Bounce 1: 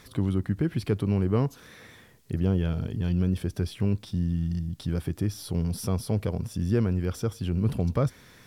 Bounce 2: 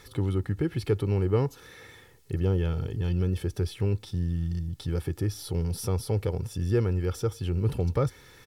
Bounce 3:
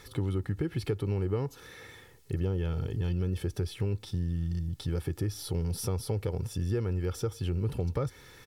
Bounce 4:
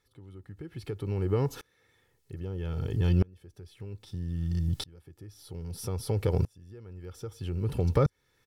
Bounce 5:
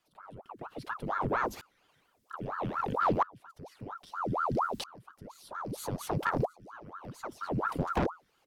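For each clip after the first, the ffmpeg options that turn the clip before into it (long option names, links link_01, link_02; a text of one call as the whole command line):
ffmpeg -i in.wav -af "aecho=1:1:2.3:0.56,volume=-1dB" out.wav
ffmpeg -i in.wav -af "acompressor=threshold=-27dB:ratio=4" out.wav
ffmpeg -i in.wav -af "aeval=exprs='val(0)*pow(10,-32*if(lt(mod(-0.62*n/s,1),2*abs(-0.62)/1000),1-mod(-0.62*n/s,1)/(2*abs(-0.62)/1000),(mod(-0.62*n/s,1)-2*abs(-0.62)/1000)/(1-2*abs(-0.62)/1000))/20)':channel_layout=same,volume=8.5dB" out.wav
ffmpeg -i in.wav -af "aeval=exprs='0.237*(cos(1*acos(clip(val(0)/0.237,-1,1)))-cos(1*PI/2))+0.106*(cos(4*acos(clip(val(0)/0.237,-1,1)))-cos(4*PI/2))+0.0422*(cos(5*acos(clip(val(0)/0.237,-1,1)))-cos(5*PI/2))+0.106*(cos(6*acos(clip(val(0)/0.237,-1,1)))-cos(6*PI/2))+0.0473*(cos(8*acos(clip(val(0)/0.237,-1,1)))-cos(8*PI/2))':channel_layout=same,afreqshift=-85,aeval=exprs='val(0)*sin(2*PI*750*n/s+750*0.85/4.3*sin(2*PI*4.3*n/s))':channel_layout=same,volume=-4.5dB" out.wav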